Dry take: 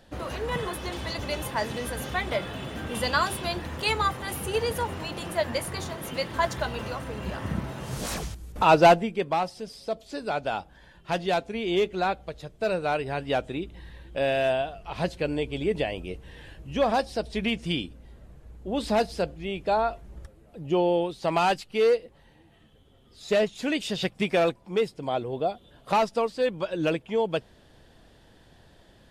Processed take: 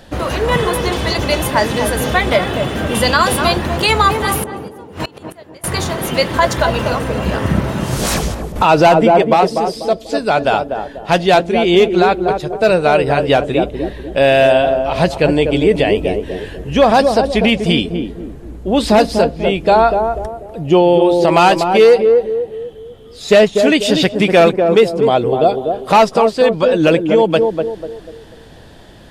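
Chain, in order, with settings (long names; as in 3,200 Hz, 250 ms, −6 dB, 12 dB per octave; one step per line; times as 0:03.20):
0:04.42–0:05.64: gate with flip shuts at −24 dBFS, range −28 dB
feedback echo with a band-pass in the loop 245 ms, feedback 43%, band-pass 370 Hz, level −4 dB
boost into a limiter +15.5 dB
level −1 dB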